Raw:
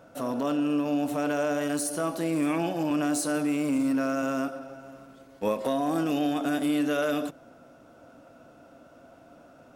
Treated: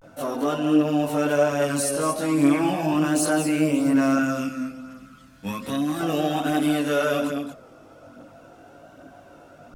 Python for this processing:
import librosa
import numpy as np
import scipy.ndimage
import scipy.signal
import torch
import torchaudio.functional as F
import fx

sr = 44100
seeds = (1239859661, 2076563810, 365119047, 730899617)

p1 = fx.band_shelf(x, sr, hz=590.0, db=-13.0, octaves=1.7, at=(4.18, 6.0))
p2 = p1 + fx.echo_single(p1, sr, ms=220, db=-8.5, dry=0)
p3 = fx.chorus_voices(p2, sr, voices=2, hz=0.61, base_ms=20, depth_ms=1.3, mix_pct=60)
p4 = fx.vibrato(p3, sr, rate_hz=0.36, depth_cents=61.0)
y = p4 * librosa.db_to_amplitude(8.0)